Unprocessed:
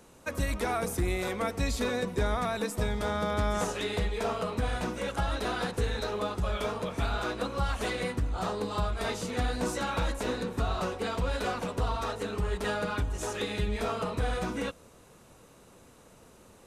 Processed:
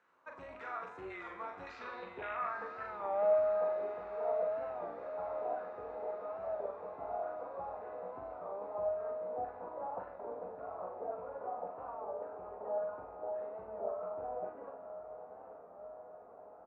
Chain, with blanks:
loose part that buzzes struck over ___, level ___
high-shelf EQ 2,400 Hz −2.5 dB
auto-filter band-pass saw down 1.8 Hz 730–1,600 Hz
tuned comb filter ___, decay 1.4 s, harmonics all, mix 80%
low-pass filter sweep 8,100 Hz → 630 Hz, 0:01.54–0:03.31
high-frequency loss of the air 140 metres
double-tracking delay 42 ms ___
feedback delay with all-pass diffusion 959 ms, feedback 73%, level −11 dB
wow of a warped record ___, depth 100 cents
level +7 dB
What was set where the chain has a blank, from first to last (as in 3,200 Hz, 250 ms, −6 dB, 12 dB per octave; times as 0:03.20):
−34 dBFS, −27 dBFS, 89 Hz, −5 dB, 33 1/3 rpm